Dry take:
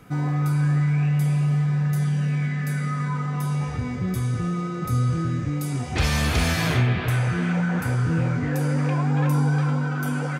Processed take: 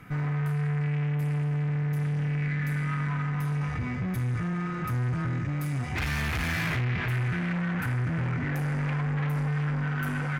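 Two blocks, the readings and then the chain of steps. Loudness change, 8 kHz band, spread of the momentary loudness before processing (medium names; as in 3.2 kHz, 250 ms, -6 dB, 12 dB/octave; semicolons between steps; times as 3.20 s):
-5.5 dB, -11.5 dB, 5 LU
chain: valve stage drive 28 dB, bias 0.35; ten-band graphic EQ 125 Hz +3 dB, 500 Hz -5 dB, 2 kHz +8 dB, 4 kHz -4 dB, 8 kHz -6 dB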